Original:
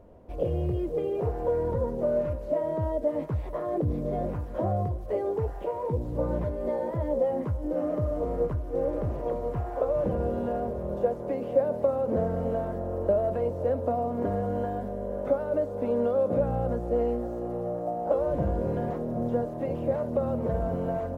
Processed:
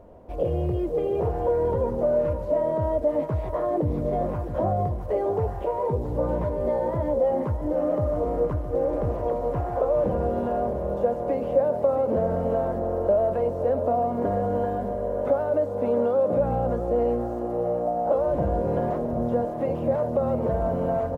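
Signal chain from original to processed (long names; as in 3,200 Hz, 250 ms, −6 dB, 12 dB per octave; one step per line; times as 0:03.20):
parametric band 790 Hz +4.5 dB 1.5 octaves
in parallel at −0.5 dB: brickwall limiter −20 dBFS, peak gain reduction 10.5 dB
on the sum: single-tap delay 667 ms −11 dB
level −3.5 dB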